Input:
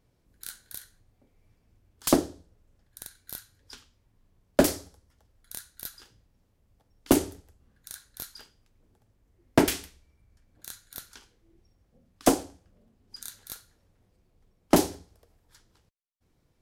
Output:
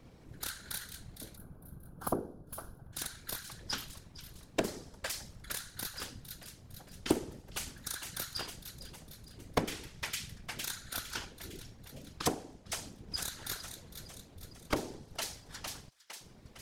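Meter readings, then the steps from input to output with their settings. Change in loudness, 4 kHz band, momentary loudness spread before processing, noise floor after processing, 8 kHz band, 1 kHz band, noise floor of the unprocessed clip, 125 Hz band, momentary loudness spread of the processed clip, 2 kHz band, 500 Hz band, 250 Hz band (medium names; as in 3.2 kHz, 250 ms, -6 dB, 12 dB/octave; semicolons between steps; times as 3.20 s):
-11.0 dB, -0.5 dB, 20 LU, -57 dBFS, -4.5 dB, -7.5 dB, -70 dBFS, -5.5 dB, 15 LU, -2.5 dB, -10.0 dB, -12.0 dB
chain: partial rectifier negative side -3 dB; on a send: feedback echo behind a high-pass 457 ms, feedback 49%, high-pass 2 kHz, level -15.5 dB; on the sum: compression 16:1, threshold -43 dBFS, peak gain reduction 28 dB; time-frequency box 1.36–2.93 s, 1.6–9.5 kHz -19 dB; treble shelf 8.2 kHz -11 dB; whisper effect; trim +15 dB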